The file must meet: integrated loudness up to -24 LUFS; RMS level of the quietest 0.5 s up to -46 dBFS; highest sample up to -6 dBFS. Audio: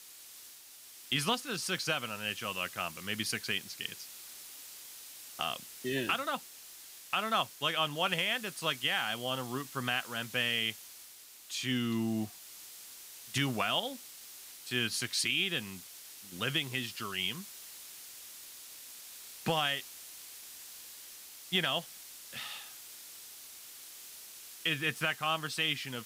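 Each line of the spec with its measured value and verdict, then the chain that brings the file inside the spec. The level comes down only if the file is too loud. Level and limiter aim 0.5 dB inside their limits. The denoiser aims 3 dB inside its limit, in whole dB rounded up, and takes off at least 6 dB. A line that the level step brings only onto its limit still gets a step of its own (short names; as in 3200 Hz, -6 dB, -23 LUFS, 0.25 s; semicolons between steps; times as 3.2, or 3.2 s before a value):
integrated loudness -33.0 LUFS: OK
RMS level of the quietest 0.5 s -53 dBFS: OK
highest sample -17.0 dBFS: OK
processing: none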